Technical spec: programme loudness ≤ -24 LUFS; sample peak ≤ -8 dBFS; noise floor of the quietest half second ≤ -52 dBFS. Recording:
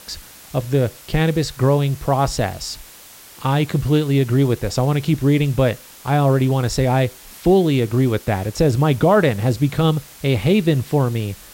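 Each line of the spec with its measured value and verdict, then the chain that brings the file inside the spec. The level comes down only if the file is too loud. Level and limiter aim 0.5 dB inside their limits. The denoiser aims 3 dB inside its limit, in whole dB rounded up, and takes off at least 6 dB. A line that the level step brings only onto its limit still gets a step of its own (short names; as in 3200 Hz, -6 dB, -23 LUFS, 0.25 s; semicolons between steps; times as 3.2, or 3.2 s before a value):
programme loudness -18.5 LUFS: fail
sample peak -5.5 dBFS: fail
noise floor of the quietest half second -42 dBFS: fail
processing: denoiser 7 dB, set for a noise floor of -42 dBFS; gain -6 dB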